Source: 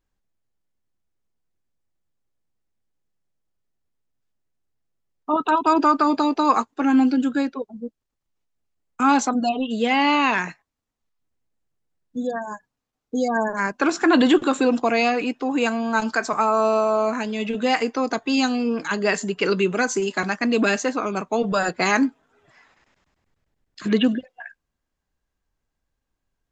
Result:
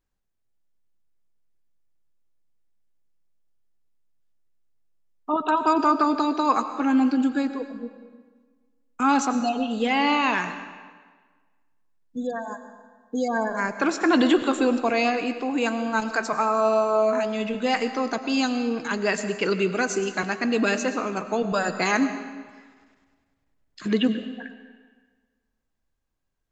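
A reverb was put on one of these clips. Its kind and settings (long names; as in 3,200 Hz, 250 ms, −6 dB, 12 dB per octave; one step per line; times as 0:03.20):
comb and all-pass reverb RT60 1.5 s, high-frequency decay 0.85×, pre-delay 65 ms, DRR 10 dB
level −3 dB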